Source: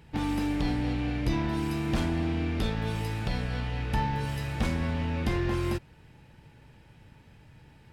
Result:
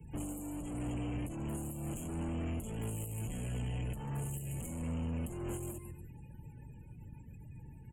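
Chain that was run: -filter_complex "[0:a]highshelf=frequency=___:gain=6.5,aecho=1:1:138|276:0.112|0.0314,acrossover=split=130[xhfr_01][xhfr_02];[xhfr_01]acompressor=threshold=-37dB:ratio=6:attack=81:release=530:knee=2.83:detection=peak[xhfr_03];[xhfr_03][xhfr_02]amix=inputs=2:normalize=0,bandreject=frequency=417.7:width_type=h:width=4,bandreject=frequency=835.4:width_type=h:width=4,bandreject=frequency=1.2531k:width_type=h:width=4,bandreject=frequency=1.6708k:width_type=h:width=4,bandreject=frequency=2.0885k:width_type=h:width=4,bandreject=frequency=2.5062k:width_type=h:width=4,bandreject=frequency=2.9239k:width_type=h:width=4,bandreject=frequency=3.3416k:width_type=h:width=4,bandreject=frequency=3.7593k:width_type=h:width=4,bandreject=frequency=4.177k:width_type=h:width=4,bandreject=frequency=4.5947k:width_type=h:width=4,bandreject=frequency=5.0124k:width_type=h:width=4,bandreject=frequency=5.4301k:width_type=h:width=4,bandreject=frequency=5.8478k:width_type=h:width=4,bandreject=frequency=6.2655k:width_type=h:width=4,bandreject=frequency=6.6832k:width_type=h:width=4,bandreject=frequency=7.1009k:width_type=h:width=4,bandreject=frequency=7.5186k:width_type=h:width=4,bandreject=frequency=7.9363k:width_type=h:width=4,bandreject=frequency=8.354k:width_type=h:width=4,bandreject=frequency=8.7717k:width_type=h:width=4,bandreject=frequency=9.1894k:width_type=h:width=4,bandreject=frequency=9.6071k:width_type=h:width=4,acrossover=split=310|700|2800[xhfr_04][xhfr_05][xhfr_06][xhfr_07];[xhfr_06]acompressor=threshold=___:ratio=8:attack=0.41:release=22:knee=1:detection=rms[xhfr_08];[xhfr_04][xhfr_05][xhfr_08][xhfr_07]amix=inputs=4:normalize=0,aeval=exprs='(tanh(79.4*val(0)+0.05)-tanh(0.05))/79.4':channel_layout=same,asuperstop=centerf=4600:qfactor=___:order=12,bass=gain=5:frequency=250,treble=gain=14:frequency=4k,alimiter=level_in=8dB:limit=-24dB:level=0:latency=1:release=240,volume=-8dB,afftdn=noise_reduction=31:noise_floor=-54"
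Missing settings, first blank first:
5.6k, -52dB, 1.3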